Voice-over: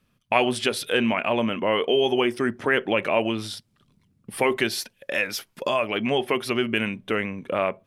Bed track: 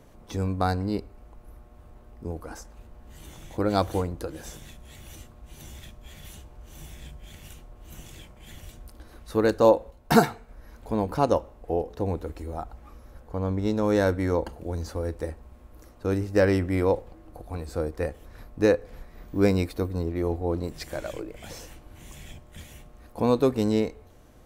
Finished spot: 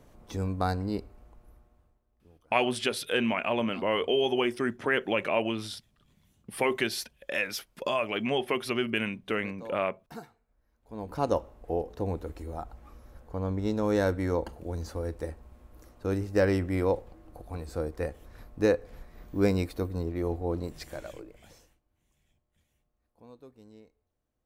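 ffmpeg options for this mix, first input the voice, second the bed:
ffmpeg -i stem1.wav -i stem2.wav -filter_complex "[0:a]adelay=2200,volume=-5dB[link_01];[1:a]volume=18.5dB,afade=type=out:start_time=1.06:duration=0.94:silence=0.0794328,afade=type=in:start_time=10.83:duration=0.54:silence=0.0794328,afade=type=out:start_time=20.6:duration=1.2:silence=0.0501187[link_02];[link_01][link_02]amix=inputs=2:normalize=0" out.wav

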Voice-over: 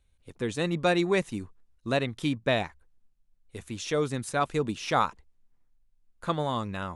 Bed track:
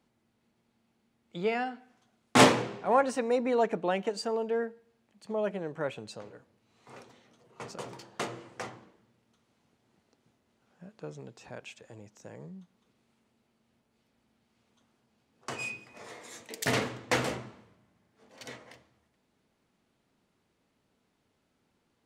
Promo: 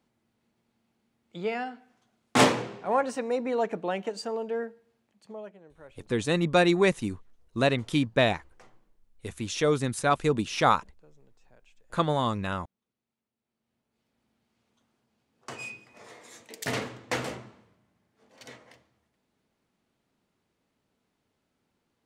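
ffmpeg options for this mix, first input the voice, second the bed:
ffmpeg -i stem1.wav -i stem2.wav -filter_complex "[0:a]adelay=5700,volume=3dB[link_01];[1:a]volume=13.5dB,afade=type=out:start_time=4.94:duration=0.6:silence=0.158489,afade=type=in:start_time=13.38:duration=0.89:silence=0.188365[link_02];[link_01][link_02]amix=inputs=2:normalize=0" out.wav

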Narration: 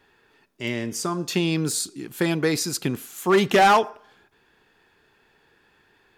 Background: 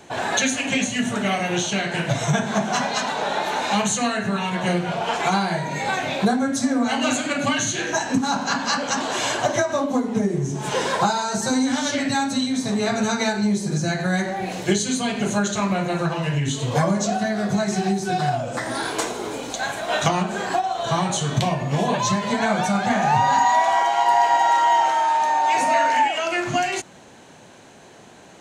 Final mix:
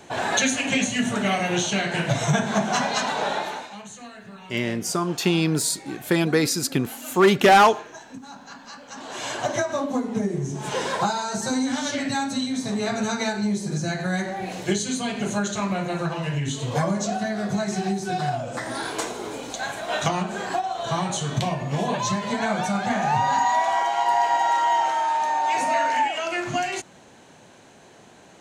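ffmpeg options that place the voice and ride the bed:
ffmpeg -i stem1.wav -i stem2.wav -filter_complex "[0:a]adelay=3900,volume=2dB[link_01];[1:a]volume=15dB,afade=type=out:start_time=3.26:duration=0.44:silence=0.11885,afade=type=in:start_time=8.88:duration=0.66:silence=0.16788[link_02];[link_01][link_02]amix=inputs=2:normalize=0" out.wav

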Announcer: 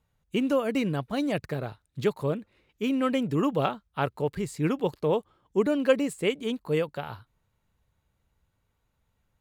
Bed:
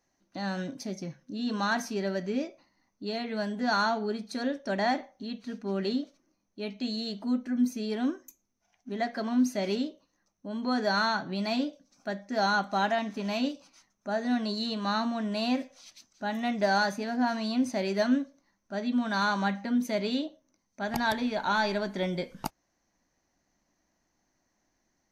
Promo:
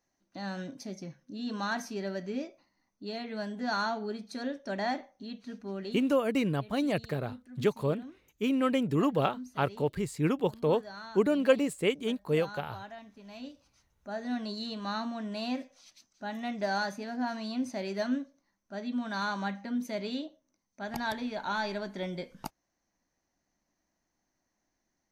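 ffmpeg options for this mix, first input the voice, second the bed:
ffmpeg -i stem1.wav -i stem2.wav -filter_complex "[0:a]adelay=5600,volume=-1.5dB[link_01];[1:a]volume=8dB,afade=type=out:start_time=5.55:duration=0.67:silence=0.211349,afade=type=in:start_time=13.25:duration=1.12:silence=0.237137[link_02];[link_01][link_02]amix=inputs=2:normalize=0" out.wav

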